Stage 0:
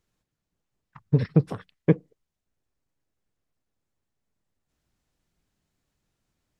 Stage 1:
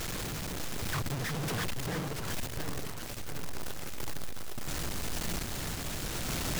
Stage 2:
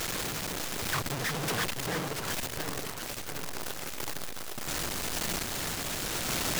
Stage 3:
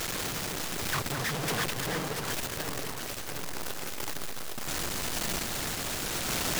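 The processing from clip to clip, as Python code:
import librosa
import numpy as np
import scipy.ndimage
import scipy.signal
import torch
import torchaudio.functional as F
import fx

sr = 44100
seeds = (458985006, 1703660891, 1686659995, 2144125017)

y1 = np.sign(x) * np.sqrt(np.mean(np.square(x)))
y1 = fx.tremolo_random(y1, sr, seeds[0], hz=3.5, depth_pct=55)
y1 = fx.echo_pitch(y1, sr, ms=594, semitones=-1, count=3, db_per_echo=-6.0)
y2 = fx.low_shelf(y1, sr, hz=200.0, db=-10.5)
y2 = y2 * 10.0 ** (5.0 / 20.0)
y3 = y2 + 10.0 ** (-8.5 / 20.0) * np.pad(y2, (int(216 * sr / 1000.0), 0))[:len(y2)]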